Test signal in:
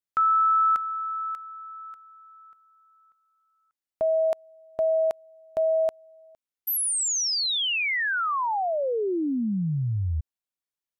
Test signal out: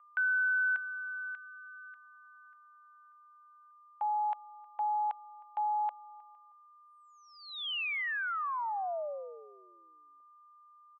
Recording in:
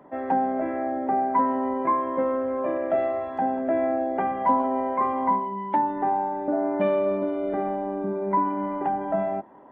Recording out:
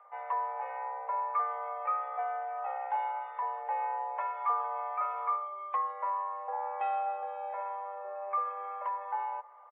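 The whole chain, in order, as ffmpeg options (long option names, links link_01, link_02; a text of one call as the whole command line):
ffmpeg -i in.wav -filter_complex "[0:a]aeval=exprs='val(0)+0.00398*sin(2*PI*1000*n/s)':channel_layout=same,highpass=frequency=390:width_type=q:width=0.5412,highpass=frequency=390:width_type=q:width=1.307,lowpass=frequency=3100:width_type=q:width=0.5176,lowpass=frequency=3100:width_type=q:width=0.7071,lowpass=frequency=3100:width_type=q:width=1.932,afreqshift=200,asplit=2[link_01][link_02];[link_02]adelay=313,lowpass=frequency=2000:poles=1,volume=-23.5dB,asplit=2[link_03][link_04];[link_04]adelay=313,lowpass=frequency=2000:poles=1,volume=0.26[link_05];[link_01][link_03][link_05]amix=inputs=3:normalize=0,volume=-8.5dB" out.wav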